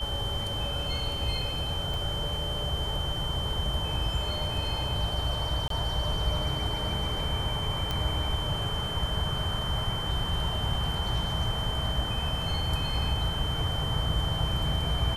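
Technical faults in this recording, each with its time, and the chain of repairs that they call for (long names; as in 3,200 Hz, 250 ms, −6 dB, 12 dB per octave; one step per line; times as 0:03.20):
whistle 3,100 Hz −33 dBFS
0:01.94: click
0:05.68–0:05.70: drop-out 23 ms
0:07.91: click −16 dBFS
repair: click removal
notch filter 3,100 Hz, Q 30
repair the gap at 0:05.68, 23 ms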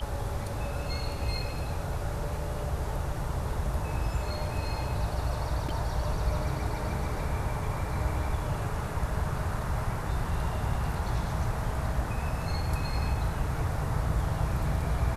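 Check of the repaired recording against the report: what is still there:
none of them is left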